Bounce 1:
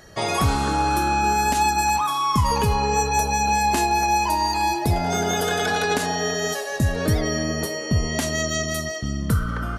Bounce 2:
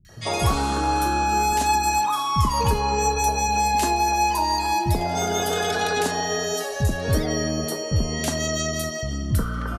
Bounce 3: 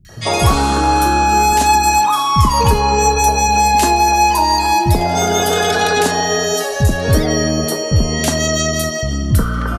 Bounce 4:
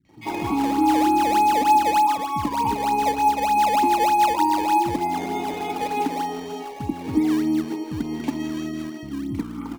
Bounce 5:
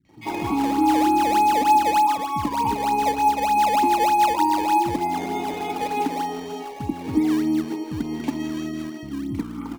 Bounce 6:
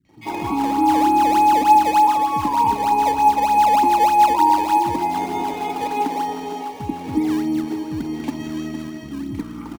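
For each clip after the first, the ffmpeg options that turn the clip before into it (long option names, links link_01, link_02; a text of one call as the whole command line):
ffmpeg -i in.wav -filter_complex "[0:a]acrossover=split=190|1800[link_01][link_02][link_03];[link_03]adelay=50[link_04];[link_02]adelay=90[link_05];[link_01][link_05][link_04]amix=inputs=3:normalize=0" out.wav
ffmpeg -i in.wav -af "acontrast=33,volume=3.5dB" out.wav
ffmpeg -i in.wav -filter_complex "[0:a]asplit=3[link_01][link_02][link_03];[link_01]bandpass=frequency=300:width_type=q:width=8,volume=0dB[link_04];[link_02]bandpass=frequency=870:width_type=q:width=8,volume=-6dB[link_05];[link_03]bandpass=frequency=2240:width_type=q:width=8,volume=-9dB[link_06];[link_04][link_05][link_06]amix=inputs=3:normalize=0,asplit=2[link_07][link_08];[link_08]acrusher=samples=19:mix=1:aa=0.000001:lfo=1:lforange=30.4:lforate=3.3,volume=-6dB[link_09];[link_07][link_09]amix=inputs=2:normalize=0" out.wav
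ffmpeg -i in.wav -af anull out.wav
ffmpeg -i in.wav -af "adynamicequalizer=threshold=0.0224:dfrequency=950:dqfactor=3.1:tfrequency=950:tqfactor=3.1:attack=5:release=100:ratio=0.375:range=3:mode=boostabove:tftype=bell,aecho=1:1:462|924|1386|1848|2310:0.251|0.131|0.0679|0.0353|0.0184" out.wav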